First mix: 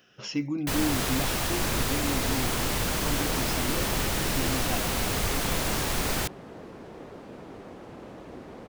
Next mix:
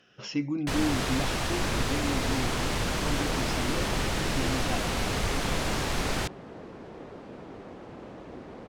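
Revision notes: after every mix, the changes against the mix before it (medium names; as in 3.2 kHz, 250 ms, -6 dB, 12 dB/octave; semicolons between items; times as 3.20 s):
master: add distance through air 52 m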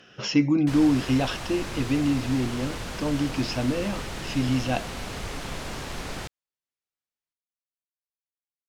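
speech +9.0 dB; first sound -5.5 dB; second sound: muted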